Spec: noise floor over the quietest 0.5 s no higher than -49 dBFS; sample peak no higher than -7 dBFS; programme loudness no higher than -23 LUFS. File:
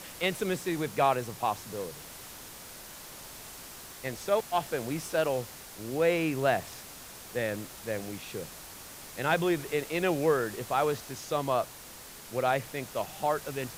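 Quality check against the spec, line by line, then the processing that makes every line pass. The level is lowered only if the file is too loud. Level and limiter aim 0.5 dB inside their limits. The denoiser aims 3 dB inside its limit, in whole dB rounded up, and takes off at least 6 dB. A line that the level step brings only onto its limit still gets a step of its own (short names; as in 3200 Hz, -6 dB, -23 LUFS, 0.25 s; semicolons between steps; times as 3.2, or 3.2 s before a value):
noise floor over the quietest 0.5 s -47 dBFS: fail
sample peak -12.0 dBFS: OK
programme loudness -31.0 LUFS: OK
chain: denoiser 6 dB, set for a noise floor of -47 dBFS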